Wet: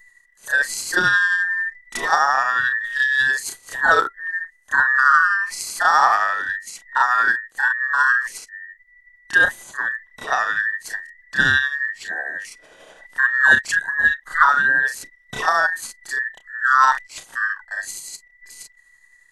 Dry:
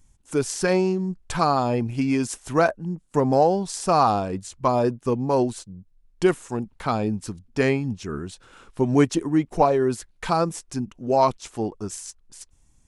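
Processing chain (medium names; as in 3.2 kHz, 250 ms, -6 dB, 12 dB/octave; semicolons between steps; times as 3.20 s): every band turned upside down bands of 2 kHz; granular stretch 1.5×, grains 178 ms; trim +4 dB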